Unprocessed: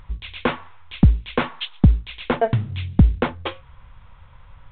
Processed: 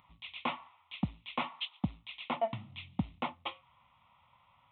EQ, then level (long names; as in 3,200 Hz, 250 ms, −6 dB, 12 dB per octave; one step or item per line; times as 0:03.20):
high-pass filter 260 Hz 12 dB per octave
phaser with its sweep stopped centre 1,600 Hz, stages 6
−8.0 dB